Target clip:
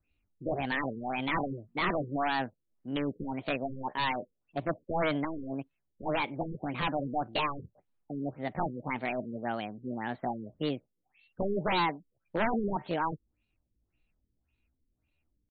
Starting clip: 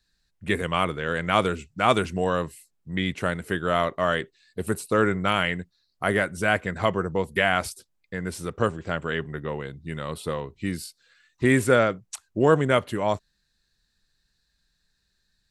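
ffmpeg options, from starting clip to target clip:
ffmpeg -i in.wav -af "aeval=exprs='0.596*(cos(1*acos(clip(val(0)/0.596,-1,1)))-cos(1*PI/2))+0.00422*(cos(5*acos(clip(val(0)/0.596,-1,1)))-cos(5*PI/2))':channel_layout=same,asetrate=68011,aresample=44100,atempo=0.64842,aresample=16000,aeval=exprs='0.112*(abs(mod(val(0)/0.112+3,4)-2)-1)':channel_layout=same,aresample=44100,afftfilt=real='re*lt(b*sr/1024,500*pow(4600/500,0.5+0.5*sin(2*PI*1.8*pts/sr)))':imag='im*lt(b*sr/1024,500*pow(4600/500,0.5+0.5*sin(2*PI*1.8*pts/sr)))':win_size=1024:overlap=0.75,volume=-3dB" out.wav

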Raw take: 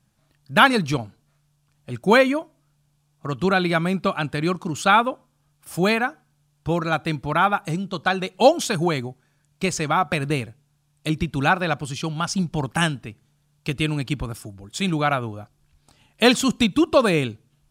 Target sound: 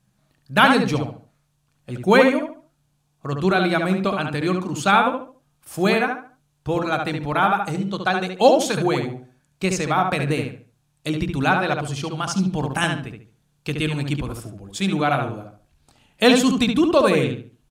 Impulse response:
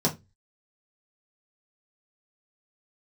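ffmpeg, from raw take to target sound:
-filter_complex "[0:a]asplit=2[link_01][link_02];[link_02]adelay=71,lowpass=frequency=3000:poles=1,volume=-4dB,asplit=2[link_03][link_04];[link_04]adelay=71,lowpass=frequency=3000:poles=1,volume=0.31,asplit=2[link_05][link_06];[link_06]adelay=71,lowpass=frequency=3000:poles=1,volume=0.31,asplit=2[link_07][link_08];[link_08]adelay=71,lowpass=frequency=3000:poles=1,volume=0.31[link_09];[link_01][link_03][link_05][link_07][link_09]amix=inputs=5:normalize=0,asplit=2[link_10][link_11];[1:a]atrim=start_sample=2205,asetrate=48510,aresample=44100[link_12];[link_11][link_12]afir=irnorm=-1:irlink=0,volume=-26.5dB[link_13];[link_10][link_13]amix=inputs=2:normalize=0,volume=-1dB"

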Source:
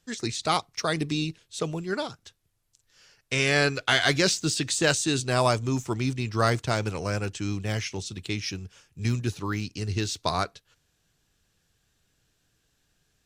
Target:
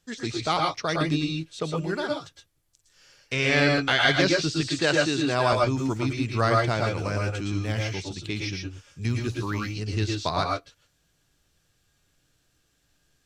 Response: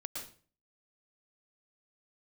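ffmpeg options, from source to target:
-filter_complex "[0:a]asettb=1/sr,asplit=3[link_01][link_02][link_03];[link_01]atrim=end=4.754[link_04];[link_02]atrim=start=4.75:end=5.53,asetpts=PTS-STARTPTS,afade=type=in:duration=0.004:curve=qsin,afade=type=out:start_time=0.776:duration=0.004:curve=qsin,highpass=150[link_05];[link_03]atrim=start=5.526[link_06];[link_04][link_05]acrossfade=duration=0.004:curve1=hsin:curve2=qsin[link_07];[link_07][link_06]acrossfade=duration=0.004:curve1=qsin:curve2=hsin,acrossover=split=5400[link_08][link_09];[link_09]acompressor=threshold=-52dB:ratio=12[link_10];[link_08][link_10]amix=inputs=2:normalize=0[link_11];[1:a]atrim=start_sample=2205,atrim=end_sample=6174[link_12];[link_11][link_12]afir=irnorm=-1:irlink=0,volume=3.5dB"

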